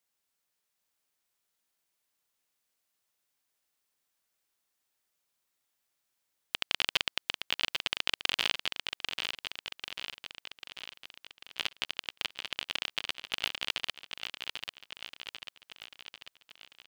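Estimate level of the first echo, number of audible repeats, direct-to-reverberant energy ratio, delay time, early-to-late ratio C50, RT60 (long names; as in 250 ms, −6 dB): −6.0 dB, 7, no reverb audible, 793 ms, no reverb audible, no reverb audible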